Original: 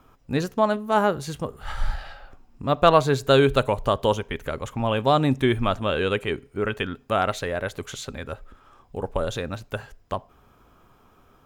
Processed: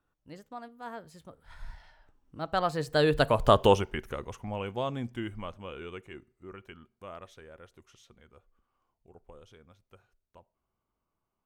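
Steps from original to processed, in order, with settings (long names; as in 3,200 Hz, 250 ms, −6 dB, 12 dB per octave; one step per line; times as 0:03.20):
source passing by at 0:03.55, 36 m/s, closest 7.5 metres
level +2 dB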